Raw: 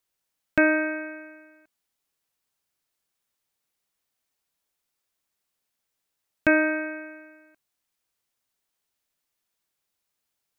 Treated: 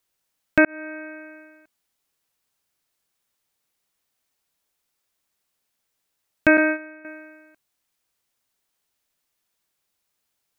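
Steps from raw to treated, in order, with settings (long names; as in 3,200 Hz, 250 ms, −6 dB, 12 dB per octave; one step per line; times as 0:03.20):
0:00.65–0:01.39: fade in
0:06.57–0:07.05: noise gate −25 dBFS, range −12 dB
level +4 dB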